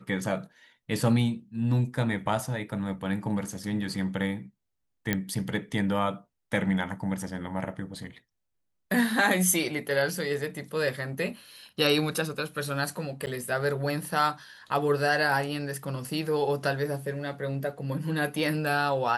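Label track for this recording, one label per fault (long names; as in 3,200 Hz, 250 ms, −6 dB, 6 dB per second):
5.130000	5.130000	click −11 dBFS
13.260000	13.270000	drop-out 8.7 ms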